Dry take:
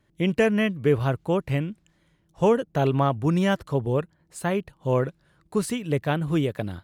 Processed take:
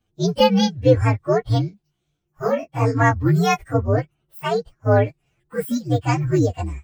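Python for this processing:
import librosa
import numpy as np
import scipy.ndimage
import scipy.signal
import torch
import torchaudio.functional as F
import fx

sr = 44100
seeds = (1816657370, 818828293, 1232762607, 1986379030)

y = fx.partial_stretch(x, sr, pct=126)
y = fx.noise_reduce_blind(y, sr, reduce_db=10)
y = fx.detune_double(y, sr, cents=49, at=(1.69, 2.99), fade=0.02)
y = F.gain(torch.from_numpy(y), 8.0).numpy()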